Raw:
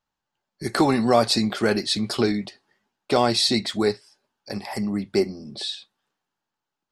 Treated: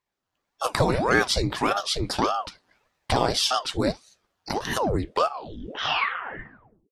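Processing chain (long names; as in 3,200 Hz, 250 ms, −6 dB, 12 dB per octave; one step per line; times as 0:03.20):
turntable brake at the end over 2.05 s
camcorder AGC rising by 13 dB per second
ring modulator whose carrier an LFO sweeps 550 Hz, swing 85%, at 1.7 Hz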